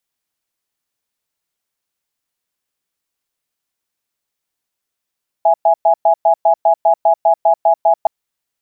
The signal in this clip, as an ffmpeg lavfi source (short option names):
-f lavfi -i "aevalsrc='0.299*(sin(2*PI*663*t)+sin(2*PI*830*t))*clip(min(mod(t,0.2),0.09-mod(t,0.2))/0.005,0,1)':d=2.62:s=44100"